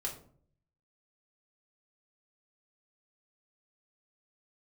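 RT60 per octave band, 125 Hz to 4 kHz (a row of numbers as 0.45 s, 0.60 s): 0.95 s, 0.70 s, 0.60 s, 0.50 s, 0.35 s, 0.30 s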